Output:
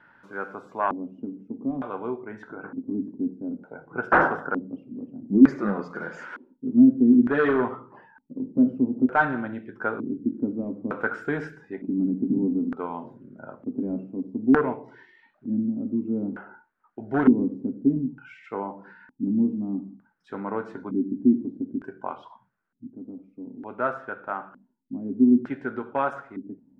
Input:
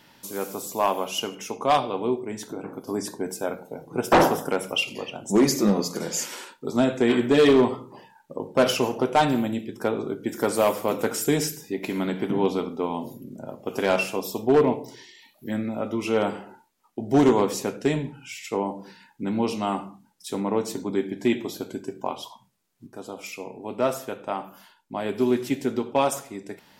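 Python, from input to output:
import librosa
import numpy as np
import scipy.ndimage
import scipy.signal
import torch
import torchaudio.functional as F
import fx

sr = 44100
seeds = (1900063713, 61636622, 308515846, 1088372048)

y = fx.spec_box(x, sr, start_s=4.47, length_s=0.21, low_hz=1800.0, high_hz=11000.0, gain_db=-11)
y = fx.filter_lfo_lowpass(y, sr, shape='square', hz=0.55, low_hz=260.0, high_hz=1500.0, q=6.6)
y = F.gain(torch.from_numpy(y), -6.5).numpy()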